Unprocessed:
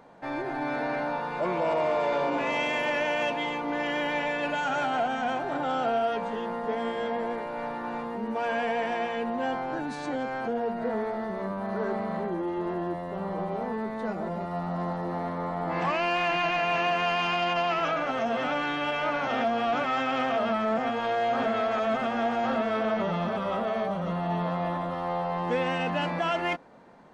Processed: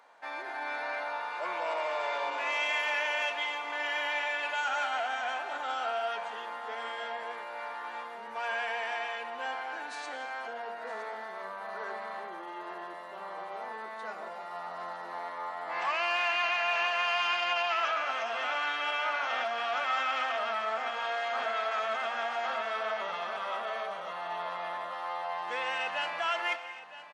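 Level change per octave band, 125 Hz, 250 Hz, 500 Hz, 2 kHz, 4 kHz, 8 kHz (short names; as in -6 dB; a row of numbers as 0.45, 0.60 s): under -30 dB, -23.0 dB, -9.0 dB, 0.0 dB, +0.5 dB, n/a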